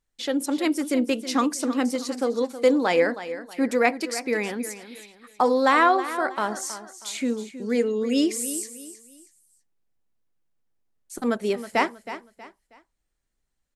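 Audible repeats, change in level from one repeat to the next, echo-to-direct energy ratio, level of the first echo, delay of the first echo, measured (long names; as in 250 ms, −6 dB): 3, −9.5 dB, −12.5 dB, −13.0 dB, 319 ms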